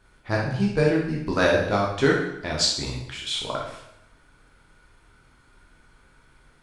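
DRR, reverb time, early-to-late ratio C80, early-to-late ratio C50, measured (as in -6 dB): -3.0 dB, 0.80 s, 6.5 dB, 3.0 dB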